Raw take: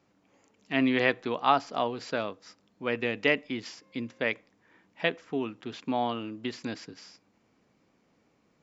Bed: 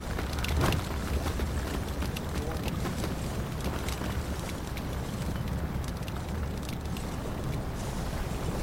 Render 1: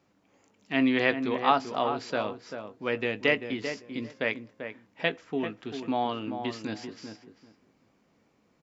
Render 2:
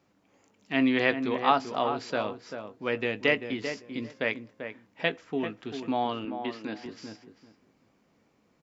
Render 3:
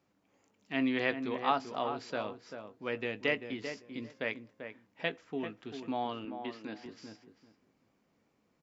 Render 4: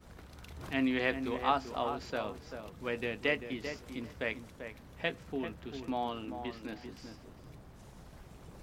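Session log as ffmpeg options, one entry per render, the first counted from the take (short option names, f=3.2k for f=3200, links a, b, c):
-filter_complex "[0:a]asplit=2[a][b];[b]adelay=19,volume=-13.5dB[c];[a][c]amix=inputs=2:normalize=0,asplit=2[d][e];[e]adelay=391,lowpass=f=1.6k:p=1,volume=-7.5dB,asplit=2[f][g];[g]adelay=391,lowpass=f=1.6k:p=1,volume=0.19,asplit=2[h][i];[i]adelay=391,lowpass=f=1.6k:p=1,volume=0.19[j];[d][f][h][j]amix=inputs=4:normalize=0"
-filter_complex "[0:a]asettb=1/sr,asplit=3[a][b][c];[a]atrim=end=6.254[d];[b]atrim=start=6.25:end=6.86,asetpts=PTS-STARTPTS,afade=t=in:d=0.004:c=qsin,afade=t=out:st=0.606:d=0.004:c=qsin,highpass=200,lowpass=3.6k[e];[c]atrim=start=6.856[f];[d][e]acrossfade=d=0.004:c1=hsin:c2=qsin[g];[g][f]acrossfade=d=0.004:c1=qsin:c2=hsin"
-af "volume=-6.5dB"
-filter_complex "[1:a]volume=-19.5dB[a];[0:a][a]amix=inputs=2:normalize=0"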